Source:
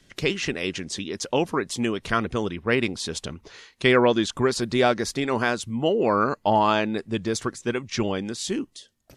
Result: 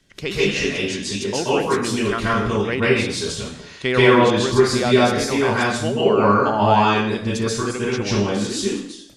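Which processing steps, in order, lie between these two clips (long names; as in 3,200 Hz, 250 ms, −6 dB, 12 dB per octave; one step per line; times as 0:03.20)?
dense smooth reverb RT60 0.67 s, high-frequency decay 1×, pre-delay 120 ms, DRR −8 dB
level −3 dB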